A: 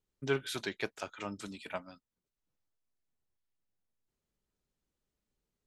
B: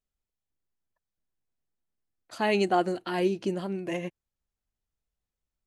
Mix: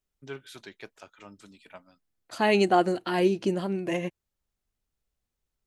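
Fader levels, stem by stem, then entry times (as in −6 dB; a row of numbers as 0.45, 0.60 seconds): −8.0, +3.0 decibels; 0.00, 0.00 seconds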